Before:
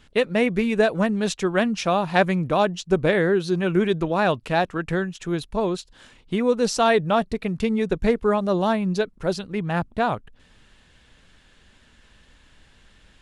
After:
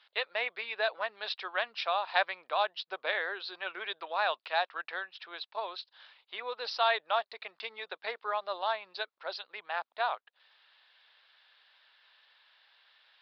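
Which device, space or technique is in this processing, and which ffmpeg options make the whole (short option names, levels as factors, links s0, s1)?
musical greeting card: -af "aresample=11025,aresample=44100,highpass=f=710:w=0.5412,highpass=f=710:w=1.3066,equalizer=f=3800:t=o:w=0.34:g=5,volume=0.501"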